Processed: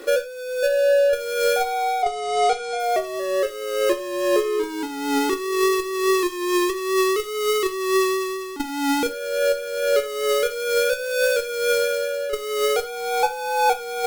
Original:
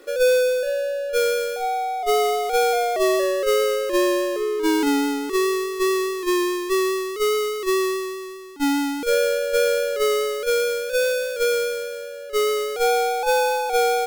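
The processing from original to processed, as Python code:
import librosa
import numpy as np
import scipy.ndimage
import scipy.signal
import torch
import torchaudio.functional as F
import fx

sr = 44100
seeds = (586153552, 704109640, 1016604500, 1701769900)

y = fx.ellip_lowpass(x, sr, hz=9100.0, order=4, stop_db=40, at=(2.02, 2.8))
y = fx.over_compress(y, sr, threshold_db=-25.0, ratio=-0.5)
y = fx.rev_gated(y, sr, seeds[0], gate_ms=130, shape='falling', drr_db=8.5)
y = F.gain(torch.from_numpy(y), 4.0).numpy()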